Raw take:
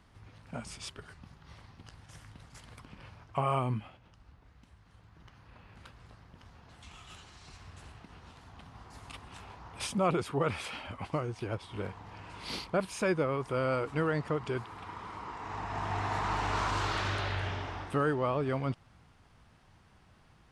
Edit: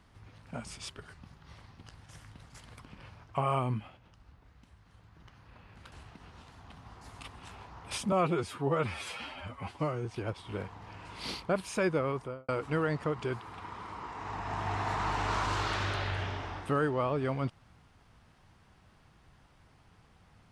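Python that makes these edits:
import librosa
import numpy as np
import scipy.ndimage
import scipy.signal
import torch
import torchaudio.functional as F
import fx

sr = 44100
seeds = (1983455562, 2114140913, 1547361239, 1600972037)

y = fx.studio_fade_out(x, sr, start_s=13.35, length_s=0.38)
y = fx.edit(y, sr, fx.cut(start_s=5.92, length_s=1.89),
    fx.stretch_span(start_s=10.01, length_s=1.29, factor=1.5), tone=tone)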